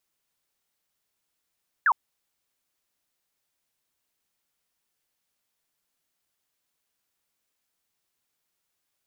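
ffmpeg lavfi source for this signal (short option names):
-f lavfi -i "aevalsrc='0.15*clip(t/0.002,0,1)*clip((0.06-t)/0.002,0,1)*sin(2*PI*1800*0.06/log(860/1800)*(exp(log(860/1800)*t/0.06)-1))':d=0.06:s=44100"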